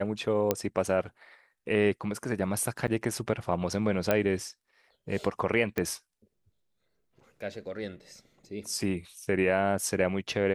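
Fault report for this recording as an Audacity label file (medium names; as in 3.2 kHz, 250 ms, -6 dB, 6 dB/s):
0.510000	0.510000	pop -10 dBFS
2.870000	2.880000	dropout 8.3 ms
4.110000	4.110000	pop -11 dBFS
5.780000	5.780000	pop -16 dBFS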